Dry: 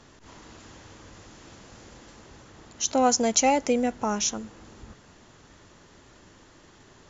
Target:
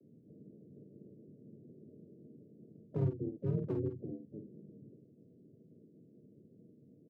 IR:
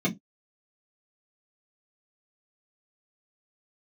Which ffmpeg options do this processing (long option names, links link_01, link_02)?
-filter_complex "[0:a]acrossover=split=270[link_01][link_02];[link_02]acompressor=threshold=-32dB:ratio=16[link_03];[link_01][link_03]amix=inputs=2:normalize=0,afreqshift=-120,asuperpass=centerf=250:order=20:qfactor=0.72,volume=26.5dB,asoftclip=hard,volume=-26.5dB,asplit=2[link_04][link_05];[link_05]aecho=0:1:37|50:0.211|0.562[link_06];[link_04][link_06]amix=inputs=2:normalize=0,asplit=4[link_07][link_08][link_09][link_10];[link_08]asetrate=29433,aresample=44100,atempo=1.49831,volume=-17dB[link_11];[link_09]asetrate=33038,aresample=44100,atempo=1.33484,volume=-5dB[link_12];[link_10]asetrate=58866,aresample=44100,atempo=0.749154,volume=-12dB[link_13];[link_07][link_11][link_12][link_13]amix=inputs=4:normalize=0,volume=-4dB"